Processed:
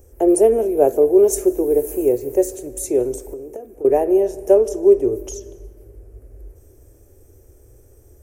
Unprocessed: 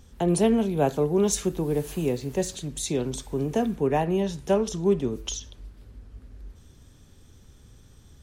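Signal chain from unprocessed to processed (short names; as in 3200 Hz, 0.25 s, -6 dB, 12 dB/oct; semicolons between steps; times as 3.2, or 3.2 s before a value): EQ curve 110 Hz 0 dB, 170 Hz -25 dB, 350 Hz +9 dB, 610 Hz +7 dB, 1000 Hz -8 dB, 2400 Hz -8 dB, 3600 Hz -23 dB, 5600 Hz -6 dB, 13000 Hz +11 dB; 3.15–3.85 compressor 12:1, threshold -33 dBFS, peak gain reduction 19.5 dB; on a send: reverb RT60 2.0 s, pre-delay 0.145 s, DRR 19.5 dB; on the sum: gain +3 dB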